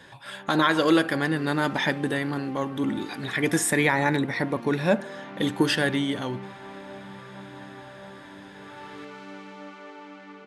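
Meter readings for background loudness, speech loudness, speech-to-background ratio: -42.5 LUFS, -25.0 LUFS, 17.5 dB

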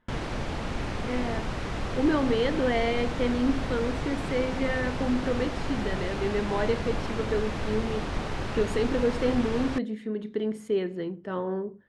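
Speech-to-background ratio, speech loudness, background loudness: 3.5 dB, -29.5 LUFS, -33.0 LUFS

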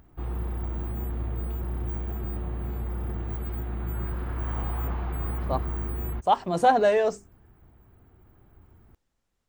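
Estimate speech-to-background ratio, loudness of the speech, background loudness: 8.0 dB, -24.5 LUFS, -32.5 LUFS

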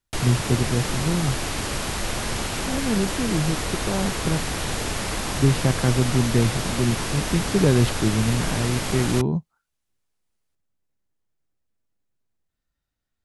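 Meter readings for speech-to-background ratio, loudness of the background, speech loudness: 3.0 dB, -27.0 LUFS, -24.0 LUFS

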